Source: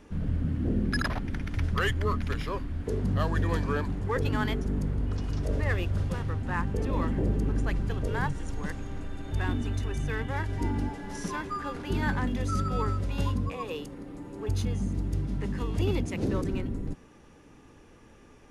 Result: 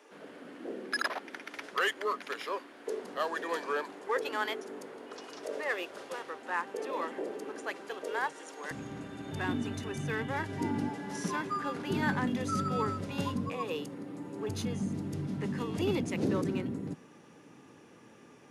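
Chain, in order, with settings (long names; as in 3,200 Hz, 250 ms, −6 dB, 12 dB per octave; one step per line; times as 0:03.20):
high-pass filter 390 Hz 24 dB per octave, from 0:08.71 130 Hz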